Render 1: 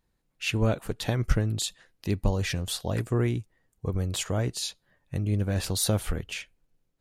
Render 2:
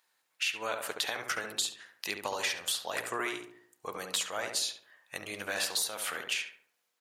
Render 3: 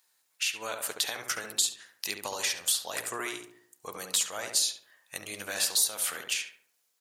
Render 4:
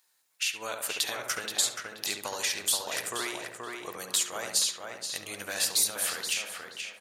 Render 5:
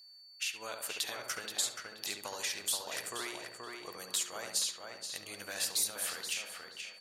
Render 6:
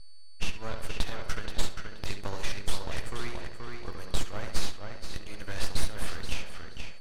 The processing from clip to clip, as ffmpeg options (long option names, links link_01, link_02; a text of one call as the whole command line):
ffmpeg -i in.wav -filter_complex "[0:a]highpass=1100,acompressor=threshold=-38dB:ratio=12,asplit=2[link_01][link_02];[link_02]adelay=70,lowpass=frequency=1500:poles=1,volume=-4dB,asplit=2[link_03][link_04];[link_04]adelay=70,lowpass=frequency=1500:poles=1,volume=0.51,asplit=2[link_05][link_06];[link_06]adelay=70,lowpass=frequency=1500:poles=1,volume=0.51,asplit=2[link_07][link_08];[link_08]adelay=70,lowpass=frequency=1500:poles=1,volume=0.51,asplit=2[link_09][link_10];[link_10]adelay=70,lowpass=frequency=1500:poles=1,volume=0.51,asplit=2[link_11][link_12];[link_12]adelay=70,lowpass=frequency=1500:poles=1,volume=0.51,asplit=2[link_13][link_14];[link_14]adelay=70,lowpass=frequency=1500:poles=1,volume=0.51[link_15];[link_03][link_05][link_07][link_09][link_11][link_13][link_15]amix=inputs=7:normalize=0[link_16];[link_01][link_16]amix=inputs=2:normalize=0,volume=9dB" out.wav
ffmpeg -i in.wav -af "bass=frequency=250:gain=2,treble=frequency=4000:gain=10,volume=-2dB" out.wav
ffmpeg -i in.wav -filter_complex "[0:a]asplit=2[link_01][link_02];[link_02]adelay=478,lowpass=frequency=3100:poles=1,volume=-3.5dB,asplit=2[link_03][link_04];[link_04]adelay=478,lowpass=frequency=3100:poles=1,volume=0.33,asplit=2[link_05][link_06];[link_06]adelay=478,lowpass=frequency=3100:poles=1,volume=0.33,asplit=2[link_07][link_08];[link_08]adelay=478,lowpass=frequency=3100:poles=1,volume=0.33[link_09];[link_01][link_03][link_05][link_07][link_09]amix=inputs=5:normalize=0" out.wav
ffmpeg -i in.wav -af "aeval=exprs='val(0)+0.00447*sin(2*PI*4500*n/s)':channel_layout=same,volume=-6.5dB" out.wav
ffmpeg -i in.wav -af "aeval=exprs='max(val(0),0)':channel_layout=same,aemphasis=mode=reproduction:type=bsi,bandreject=frequency=7000:width=16,volume=7.5dB" out.wav